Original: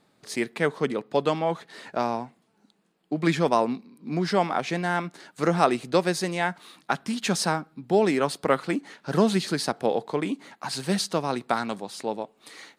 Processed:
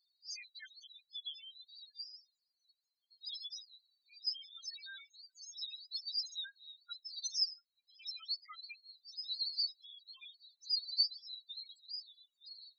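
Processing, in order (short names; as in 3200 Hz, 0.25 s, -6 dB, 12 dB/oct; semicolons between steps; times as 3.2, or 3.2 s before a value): Butterworth band-pass 5400 Hz, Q 1.5; 7.54–8 level quantiser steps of 15 dB; loudest bins only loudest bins 2; gain +11 dB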